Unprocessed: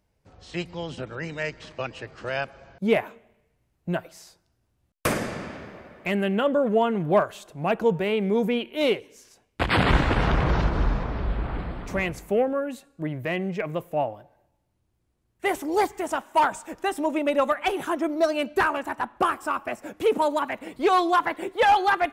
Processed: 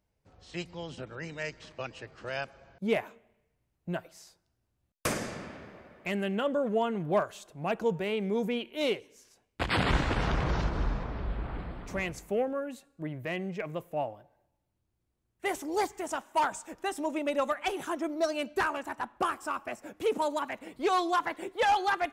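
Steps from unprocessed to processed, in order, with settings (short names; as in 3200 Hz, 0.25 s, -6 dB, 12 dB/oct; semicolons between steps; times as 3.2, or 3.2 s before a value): dynamic EQ 6400 Hz, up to +7 dB, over -49 dBFS, Q 1; gain -7 dB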